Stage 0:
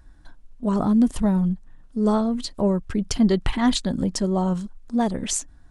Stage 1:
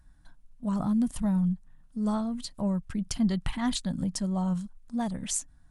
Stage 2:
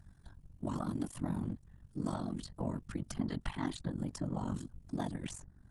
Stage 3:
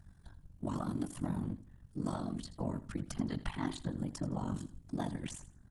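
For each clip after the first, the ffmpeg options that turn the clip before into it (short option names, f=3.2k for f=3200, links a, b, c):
-af "equalizer=f=160:t=o:w=0.67:g=6,equalizer=f=400:t=o:w=0.67:g=-11,equalizer=f=10k:t=o:w=0.67:g=7,volume=-8dB"
-filter_complex "[0:a]afftfilt=real='hypot(re,im)*cos(2*PI*random(0))':imag='hypot(re,im)*sin(2*PI*random(1))':win_size=512:overlap=0.75,acrossover=split=630|1700[a][b][c];[a]acompressor=threshold=-41dB:ratio=4[d];[b]acompressor=threshold=-50dB:ratio=4[e];[c]acompressor=threshold=-56dB:ratio=4[f];[d][e][f]amix=inputs=3:normalize=0,aeval=exprs='val(0)*sin(2*PI*23*n/s)':c=same,volume=8dB"
-af "aecho=1:1:82|164|246:0.178|0.0462|0.012"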